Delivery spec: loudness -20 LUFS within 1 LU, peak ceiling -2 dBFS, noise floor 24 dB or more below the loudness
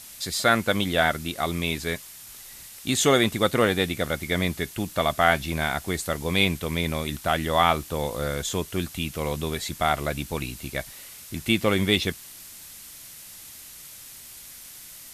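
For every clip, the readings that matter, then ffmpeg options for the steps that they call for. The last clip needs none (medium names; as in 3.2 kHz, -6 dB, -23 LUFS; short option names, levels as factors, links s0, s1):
noise floor -44 dBFS; noise floor target -49 dBFS; loudness -25.0 LUFS; peak level -4.0 dBFS; loudness target -20.0 LUFS
-> -af "afftdn=nr=6:nf=-44"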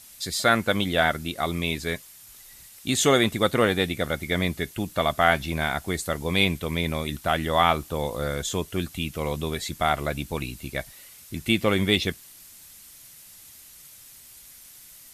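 noise floor -49 dBFS; loudness -25.0 LUFS; peak level -4.0 dBFS; loudness target -20.0 LUFS
-> -af "volume=1.78,alimiter=limit=0.794:level=0:latency=1"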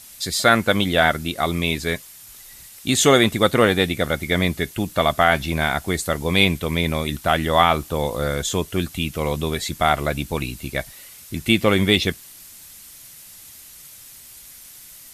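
loudness -20.0 LUFS; peak level -2.0 dBFS; noise floor -44 dBFS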